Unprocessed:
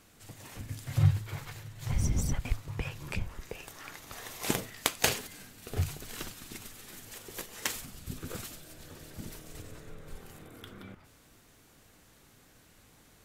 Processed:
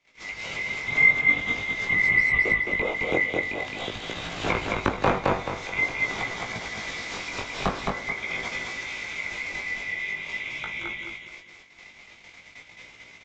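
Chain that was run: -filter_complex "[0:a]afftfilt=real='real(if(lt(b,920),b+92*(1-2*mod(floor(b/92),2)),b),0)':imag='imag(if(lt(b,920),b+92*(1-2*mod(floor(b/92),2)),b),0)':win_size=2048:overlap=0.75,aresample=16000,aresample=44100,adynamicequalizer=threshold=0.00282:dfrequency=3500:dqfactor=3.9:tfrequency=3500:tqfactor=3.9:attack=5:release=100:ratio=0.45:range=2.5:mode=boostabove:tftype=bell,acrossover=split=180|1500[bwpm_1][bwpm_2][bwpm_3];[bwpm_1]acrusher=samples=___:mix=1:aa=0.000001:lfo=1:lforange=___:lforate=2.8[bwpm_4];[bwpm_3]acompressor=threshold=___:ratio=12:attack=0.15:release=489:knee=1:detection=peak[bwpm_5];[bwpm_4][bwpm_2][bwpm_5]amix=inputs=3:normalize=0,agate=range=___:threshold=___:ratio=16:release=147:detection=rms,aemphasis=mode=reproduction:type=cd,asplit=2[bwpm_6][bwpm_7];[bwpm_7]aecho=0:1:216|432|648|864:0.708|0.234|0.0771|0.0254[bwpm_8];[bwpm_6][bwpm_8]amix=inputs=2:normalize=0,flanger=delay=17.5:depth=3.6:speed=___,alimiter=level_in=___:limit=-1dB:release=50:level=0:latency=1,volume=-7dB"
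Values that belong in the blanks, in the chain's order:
13, 13, -42dB, -25dB, -58dB, 0.46, 25.5dB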